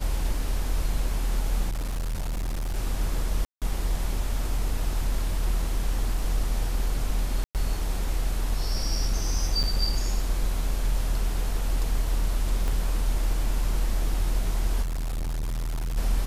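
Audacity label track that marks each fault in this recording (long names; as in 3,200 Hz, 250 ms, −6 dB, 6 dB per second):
1.690000	2.770000	clipping −25.5 dBFS
3.450000	3.620000	drop-out 167 ms
7.440000	7.550000	drop-out 108 ms
9.630000	9.640000	drop-out 7.2 ms
12.680000	12.680000	click
14.820000	15.980000	clipping −26 dBFS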